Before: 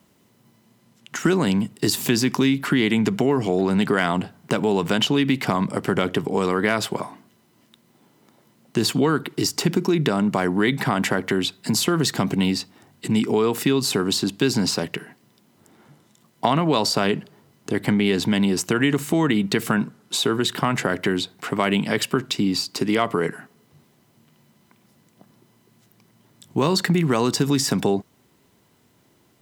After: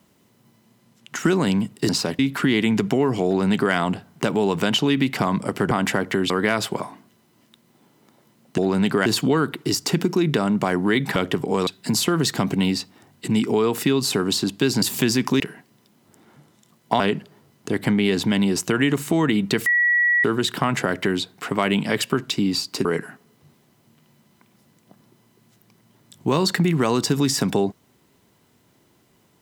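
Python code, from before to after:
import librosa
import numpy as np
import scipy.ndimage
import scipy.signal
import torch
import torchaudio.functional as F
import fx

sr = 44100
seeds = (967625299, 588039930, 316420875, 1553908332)

y = fx.edit(x, sr, fx.swap(start_s=1.89, length_s=0.58, other_s=14.62, other_length_s=0.3),
    fx.duplicate(start_s=3.54, length_s=0.48, to_s=8.78),
    fx.swap(start_s=5.99, length_s=0.51, other_s=10.88, other_length_s=0.59),
    fx.cut(start_s=16.52, length_s=0.49),
    fx.bleep(start_s=19.67, length_s=0.58, hz=1930.0, db=-15.0),
    fx.cut(start_s=22.86, length_s=0.29), tone=tone)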